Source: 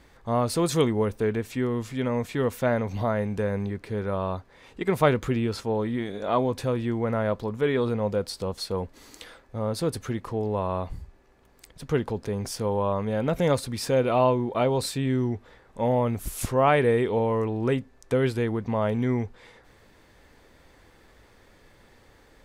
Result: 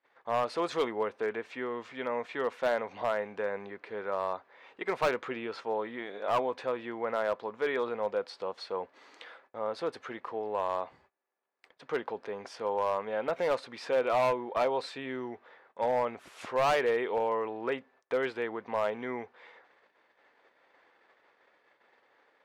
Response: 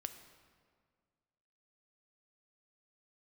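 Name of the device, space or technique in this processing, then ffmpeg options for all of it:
walkie-talkie: -af "highpass=580,lowpass=2600,asoftclip=type=hard:threshold=-21.5dB,agate=range=-22dB:threshold=-60dB:ratio=16:detection=peak"

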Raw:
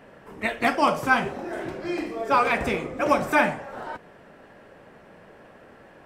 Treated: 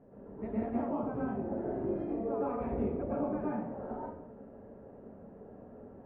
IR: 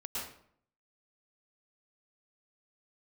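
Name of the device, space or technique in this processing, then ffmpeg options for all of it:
television next door: -filter_complex "[0:a]acompressor=threshold=-28dB:ratio=5,lowpass=490[link_01];[1:a]atrim=start_sample=2205[link_02];[link_01][link_02]afir=irnorm=-1:irlink=0"

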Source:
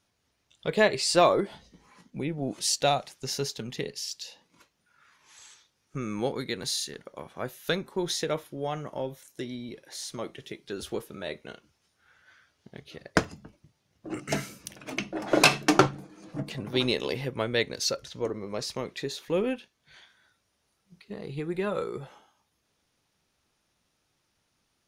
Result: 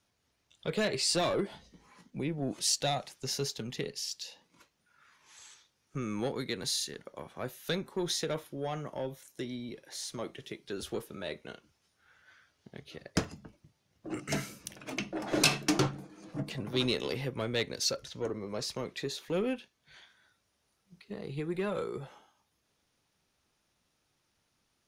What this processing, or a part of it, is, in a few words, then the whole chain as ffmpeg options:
one-band saturation: -filter_complex "[0:a]acrossover=split=280|3000[link_01][link_02][link_03];[link_02]asoftclip=type=tanh:threshold=-27dB[link_04];[link_01][link_04][link_03]amix=inputs=3:normalize=0,volume=-2dB"

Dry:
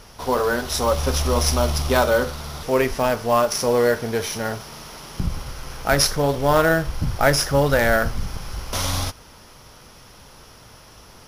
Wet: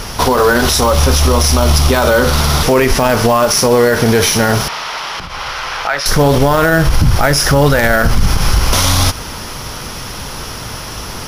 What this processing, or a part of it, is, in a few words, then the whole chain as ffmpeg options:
mastering chain: -filter_complex "[0:a]equalizer=frequency=570:width_type=o:width=1:gain=-3,acompressor=threshold=-23dB:ratio=2,asoftclip=type=hard:threshold=-10.5dB,alimiter=level_in=22dB:limit=-1dB:release=50:level=0:latency=1,asettb=1/sr,asplit=3[link_01][link_02][link_03];[link_01]atrim=end=4.684[link_04];[link_02]atrim=start=4.68:end=6.06,asetpts=PTS-STARTPTS,afade=type=in:duration=0.004:curve=qsin,afade=type=out:start_time=1.376:duration=0.004:curve=qsin,acrossover=split=590 4600:gain=0.0794 1 0.112[link_05][link_06][link_07];[link_05][link_06][link_07]amix=inputs=3:normalize=0[link_08];[link_03]atrim=start=6.056[link_09];[link_04][link_08]acrossfade=duration=0.004:curve1=hsin:curve2=qsin[link_10];[link_10][link_09]acrossfade=duration=0.004:curve1=qsin:curve2=hsin,volume=-1dB"

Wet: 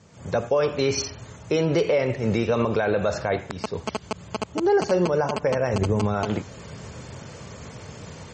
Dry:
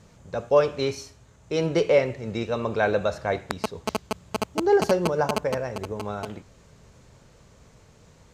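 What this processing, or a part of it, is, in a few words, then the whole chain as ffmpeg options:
low-bitrate web radio: -filter_complex "[0:a]highpass=frequency=72:width=0.5412,highpass=frequency=72:width=1.3066,bandreject=frequency=3900:width=18,asplit=3[link_01][link_02][link_03];[link_01]afade=type=out:start_time=5.73:duration=0.02[link_04];[link_02]bass=frequency=250:gain=8,treble=frequency=4000:gain=4,afade=type=in:start_time=5.73:duration=0.02,afade=type=out:start_time=6.13:duration=0.02[link_05];[link_03]afade=type=in:start_time=6.13:duration=0.02[link_06];[link_04][link_05][link_06]amix=inputs=3:normalize=0,dynaudnorm=framelen=130:gausssize=3:maxgain=15dB,alimiter=limit=-12.5dB:level=0:latency=1:release=80" -ar 48000 -c:a libmp3lame -b:a 32k

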